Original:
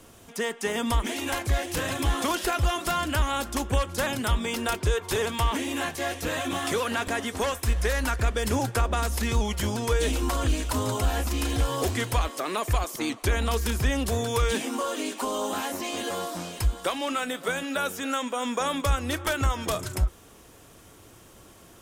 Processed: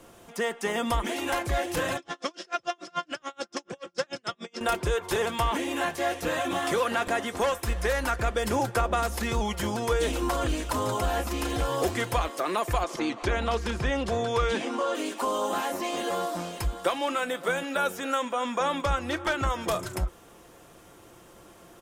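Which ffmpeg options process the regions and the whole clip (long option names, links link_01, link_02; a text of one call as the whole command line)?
ffmpeg -i in.wav -filter_complex "[0:a]asettb=1/sr,asplit=3[link_01][link_02][link_03];[link_01]atrim=end=1.974[link_04];[link_02]atrim=start=1.97:end=4.61,asetpts=PTS-STARTPTS,afade=type=in:duration=0.004:curve=qsin,afade=type=out:start_time=2.636:duration=0.004:curve=qsin,highpass=frequency=150:width=0.5412,highpass=frequency=150:width=1.3066,equalizer=frequency=240:width_type=q:width=4:gain=-5,equalizer=frequency=910:width_type=q:width=4:gain=-9,equalizer=frequency=5300:width_type=q:width=4:gain=10,lowpass=frequency=7300:width=0.5412,lowpass=frequency=7300:width=1.3066,aeval=exprs='val(0)*pow(10,-39*(0.5-0.5*cos(2*PI*6.9*n/s))/20)':channel_layout=same[link_05];[link_03]atrim=start=4.606[link_06];[link_04][link_05]acrossfade=duration=0.004:curve1=hsin:curve2=qsin[link_07];[link_07][link_06]acrossfade=duration=0.004:curve1=qsin:curve2=hsin,asettb=1/sr,asplit=3[link_08][link_09][link_10];[link_08]atrim=end=12.834[link_11];[link_09]atrim=start=12.83:end=14.95,asetpts=PTS-STARTPTS,afade=type=in:duration=0.004:curve=qsin,afade=type=out:start_time=2.116:duration=0.004:curve=qsin,lowpass=5700,acompressor=mode=upward:threshold=-27dB:ratio=2.5:attack=3.2:release=140:knee=2.83:detection=peak[link_12];[link_10]atrim=start=14.946[link_13];[link_11][link_12]acrossfade=duration=0.004:curve1=hsin:curve2=qsin[link_14];[link_14][link_13]acrossfade=duration=0.004:curve1=qsin:curve2=hsin,asettb=1/sr,asplit=3[link_15][link_16][link_17];[link_15]atrim=end=18.254[link_18];[link_16]atrim=start=18.25:end=19.47,asetpts=PTS-STARTPTS,afade=type=in:duration=0.004:curve=qsin,afade=type=out:start_time=1.216:duration=0.004:curve=qsin,acrossover=split=7200[link_19][link_20];[link_20]acompressor=threshold=-52dB:ratio=4:attack=1:release=60[link_21];[link_19][link_21]amix=inputs=2:normalize=0,bandreject=frequency=470:width=8.9[link_22];[link_17]atrim=start=19.466[link_23];[link_18][link_22]acrossfade=duration=0.004:curve1=hsin:curve2=qsin[link_24];[link_24][link_23]acrossfade=duration=0.004:curve1=qsin:curve2=hsin,equalizer=frequency=720:width=0.35:gain=6.5,aecho=1:1:5.8:0.31,volume=-4.5dB" out.wav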